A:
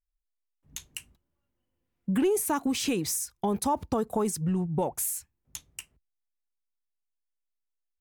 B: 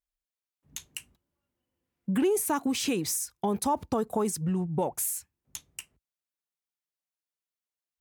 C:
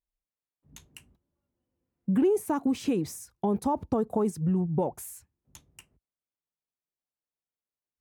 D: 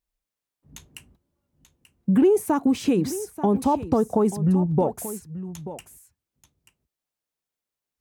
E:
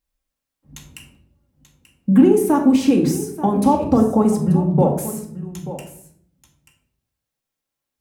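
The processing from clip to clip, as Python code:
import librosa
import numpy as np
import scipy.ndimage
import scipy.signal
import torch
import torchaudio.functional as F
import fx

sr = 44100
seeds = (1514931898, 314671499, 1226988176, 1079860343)

y1 = fx.highpass(x, sr, hz=93.0, slope=6)
y2 = fx.tilt_shelf(y1, sr, db=7.5, hz=1300.0)
y2 = y2 * librosa.db_to_amplitude(-4.5)
y3 = y2 + 10.0 ** (-14.0 / 20.0) * np.pad(y2, (int(885 * sr / 1000.0), 0))[:len(y2)]
y3 = y3 * librosa.db_to_amplitude(6.0)
y4 = fx.room_shoebox(y3, sr, seeds[0], volume_m3=1000.0, walls='furnished', distance_m=2.2)
y4 = y4 * librosa.db_to_amplitude(2.5)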